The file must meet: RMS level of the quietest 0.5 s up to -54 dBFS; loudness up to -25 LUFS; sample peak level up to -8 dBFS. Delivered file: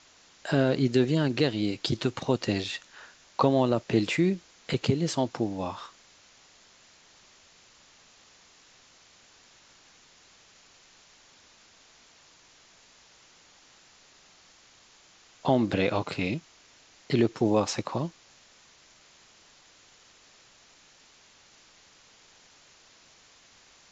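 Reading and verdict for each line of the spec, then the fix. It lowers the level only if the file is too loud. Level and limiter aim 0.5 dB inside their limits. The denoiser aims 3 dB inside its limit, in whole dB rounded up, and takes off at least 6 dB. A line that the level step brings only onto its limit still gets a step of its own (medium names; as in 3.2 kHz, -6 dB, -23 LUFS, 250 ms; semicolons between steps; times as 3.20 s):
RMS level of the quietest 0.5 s -58 dBFS: pass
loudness -27.5 LUFS: pass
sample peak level -10.5 dBFS: pass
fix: none needed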